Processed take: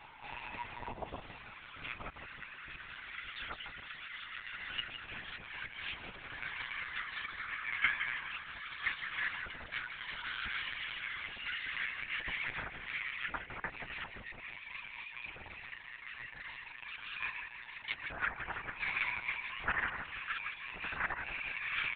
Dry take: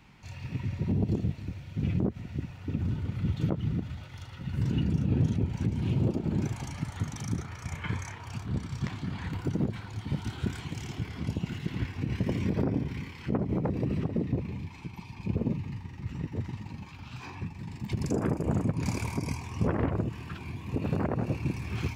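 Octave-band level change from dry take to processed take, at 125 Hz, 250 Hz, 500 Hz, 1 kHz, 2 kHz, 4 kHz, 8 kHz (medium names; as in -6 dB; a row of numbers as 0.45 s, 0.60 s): -28.5 dB, -27.0 dB, -17.5 dB, -0.5 dB, +9.5 dB, +4.5 dB, under -30 dB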